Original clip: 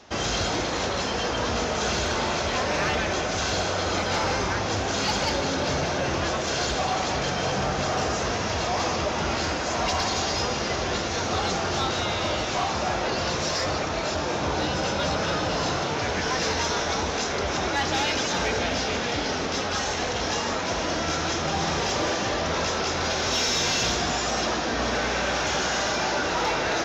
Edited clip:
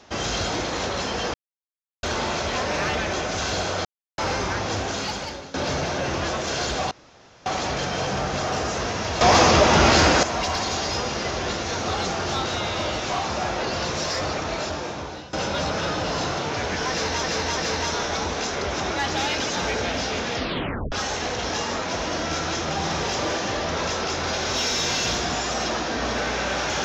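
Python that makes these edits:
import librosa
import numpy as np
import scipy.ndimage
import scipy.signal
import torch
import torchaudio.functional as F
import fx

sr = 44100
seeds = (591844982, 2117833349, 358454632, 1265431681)

y = fx.edit(x, sr, fx.silence(start_s=1.34, length_s=0.69),
    fx.silence(start_s=3.85, length_s=0.33),
    fx.fade_out_to(start_s=4.8, length_s=0.74, floor_db=-18.5),
    fx.insert_room_tone(at_s=6.91, length_s=0.55),
    fx.clip_gain(start_s=8.66, length_s=1.02, db=10.5),
    fx.fade_out_to(start_s=14.02, length_s=0.76, floor_db=-19.0),
    fx.repeat(start_s=16.34, length_s=0.34, count=3),
    fx.tape_stop(start_s=19.12, length_s=0.57), tone=tone)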